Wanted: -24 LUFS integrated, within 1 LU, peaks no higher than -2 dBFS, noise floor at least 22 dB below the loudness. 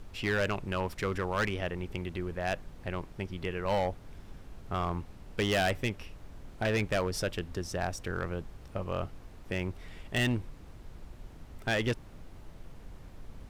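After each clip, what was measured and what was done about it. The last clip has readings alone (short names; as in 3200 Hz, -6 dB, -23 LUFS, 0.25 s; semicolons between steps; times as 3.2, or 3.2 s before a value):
clipped 1.6%; flat tops at -23.5 dBFS; noise floor -50 dBFS; noise floor target -56 dBFS; loudness -33.5 LUFS; peak -23.5 dBFS; loudness target -24.0 LUFS
-> clip repair -23.5 dBFS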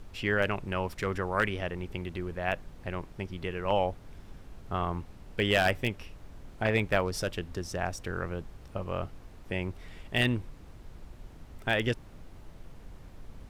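clipped 0.0%; noise floor -50 dBFS; noise floor target -54 dBFS
-> noise print and reduce 6 dB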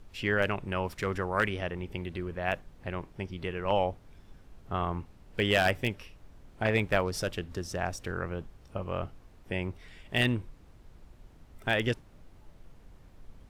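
noise floor -56 dBFS; loudness -32.0 LUFS; peak -14.5 dBFS; loudness target -24.0 LUFS
-> gain +8 dB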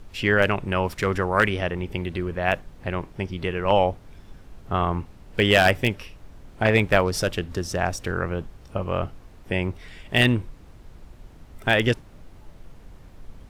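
loudness -24.0 LUFS; peak -6.5 dBFS; noise floor -48 dBFS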